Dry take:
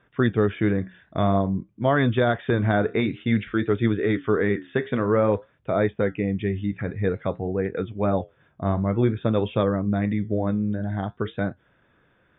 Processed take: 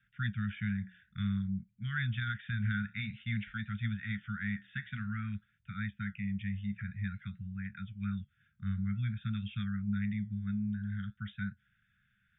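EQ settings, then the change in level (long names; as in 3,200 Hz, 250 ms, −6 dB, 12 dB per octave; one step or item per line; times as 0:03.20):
Chebyshev band-stop filter 210–1,400 Hz, order 5
parametric band 160 Hz −5.5 dB 0.29 octaves
−8.0 dB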